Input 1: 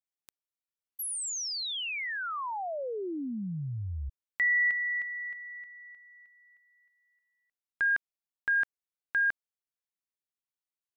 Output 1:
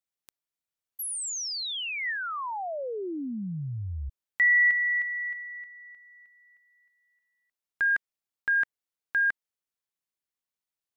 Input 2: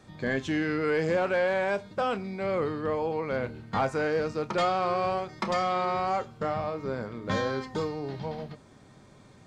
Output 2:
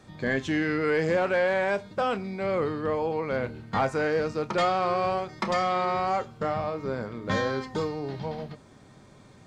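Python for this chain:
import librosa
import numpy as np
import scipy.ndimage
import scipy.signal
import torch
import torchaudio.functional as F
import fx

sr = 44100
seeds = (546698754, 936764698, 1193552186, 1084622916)

y = fx.dynamic_eq(x, sr, hz=1900.0, q=6.7, threshold_db=-44.0, ratio=4.0, max_db=4)
y = F.gain(torch.from_numpy(y), 1.5).numpy()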